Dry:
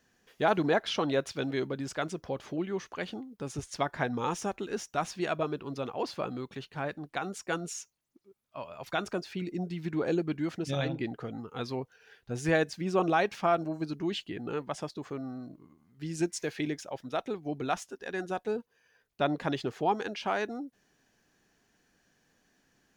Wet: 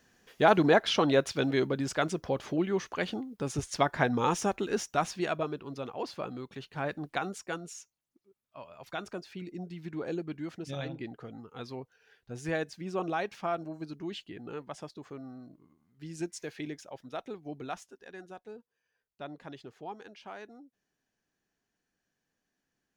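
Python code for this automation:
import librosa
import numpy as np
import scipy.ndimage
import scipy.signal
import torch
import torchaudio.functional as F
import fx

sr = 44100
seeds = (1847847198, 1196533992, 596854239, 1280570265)

y = fx.gain(x, sr, db=fx.line((4.82, 4.0), (5.61, -3.0), (6.49, -3.0), (7.08, 3.5), (7.64, -6.0), (17.55, -6.0), (18.47, -14.0)))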